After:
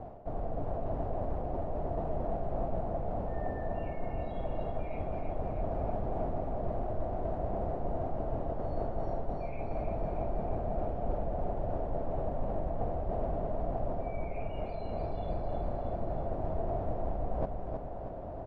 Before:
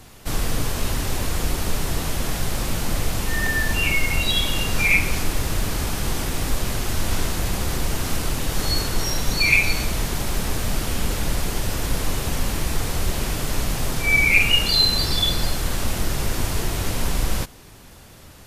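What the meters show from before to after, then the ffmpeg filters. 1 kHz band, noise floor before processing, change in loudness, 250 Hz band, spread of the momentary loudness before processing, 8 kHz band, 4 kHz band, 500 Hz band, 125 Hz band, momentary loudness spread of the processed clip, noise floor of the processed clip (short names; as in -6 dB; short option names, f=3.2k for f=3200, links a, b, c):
-5.5 dB, -44 dBFS, -14.0 dB, -10.0 dB, 10 LU, under -40 dB, under -40 dB, -2.0 dB, -11.5 dB, 3 LU, -39 dBFS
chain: -af "areverse,acompressor=threshold=-31dB:ratio=12,areverse,lowpass=f=670:t=q:w=5.9,aecho=1:1:317|634|951|1268|1585|1902|2219|2536:0.501|0.291|0.169|0.0978|0.0567|0.0329|0.0191|0.0111"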